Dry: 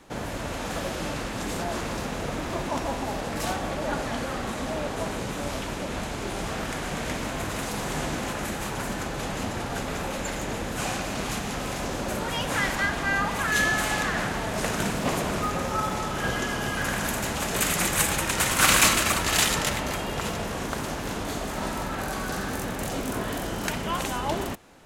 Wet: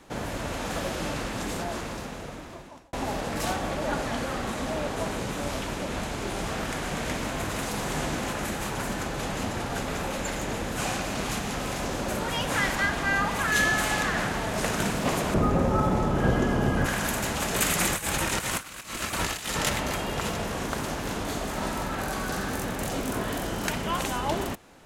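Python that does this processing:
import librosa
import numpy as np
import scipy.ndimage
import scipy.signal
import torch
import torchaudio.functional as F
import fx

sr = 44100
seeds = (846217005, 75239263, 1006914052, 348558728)

y = fx.tilt_shelf(x, sr, db=8.5, hz=1100.0, at=(15.34, 16.86))
y = fx.over_compress(y, sr, threshold_db=-27.0, ratio=-0.5, at=(17.88, 19.58), fade=0.02)
y = fx.edit(y, sr, fx.fade_out_span(start_s=1.32, length_s=1.61), tone=tone)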